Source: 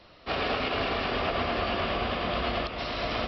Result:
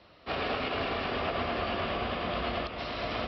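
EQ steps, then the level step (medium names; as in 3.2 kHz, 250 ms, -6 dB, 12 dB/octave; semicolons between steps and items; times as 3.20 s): high-pass 48 Hz; distance through air 72 m; -2.5 dB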